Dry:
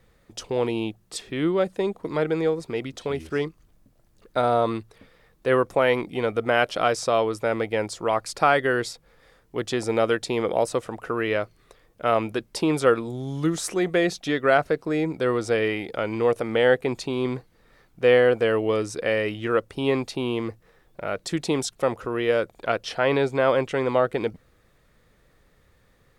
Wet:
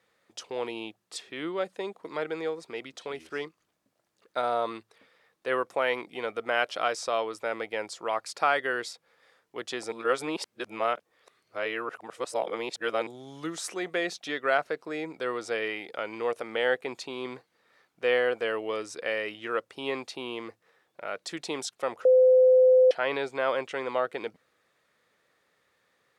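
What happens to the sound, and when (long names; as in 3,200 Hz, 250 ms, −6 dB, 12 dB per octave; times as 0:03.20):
0:09.92–0:13.07: reverse
0:22.05–0:22.91: beep over 512 Hz −6.5 dBFS
whole clip: meter weighting curve A; level −5 dB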